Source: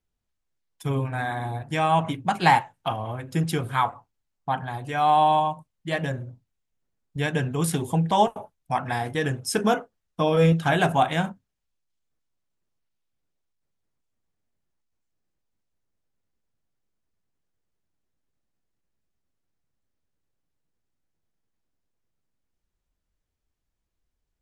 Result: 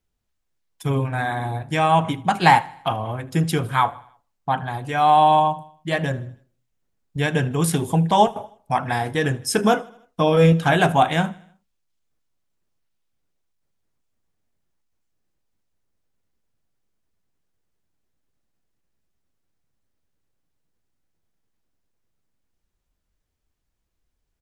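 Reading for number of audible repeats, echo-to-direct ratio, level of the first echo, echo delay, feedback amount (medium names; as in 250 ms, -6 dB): 3, -21.0 dB, -22.5 dB, 78 ms, 52%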